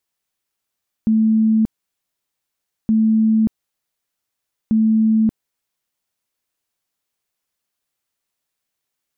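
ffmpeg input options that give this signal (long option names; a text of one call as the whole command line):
ffmpeg -f lavfi -i "aevalsrc='0.266*sin(2*PI*220*mod(t,1.82))*lt(mod(t,1.82),128/220)':duration=5.46:sample_rate=44100" out.wav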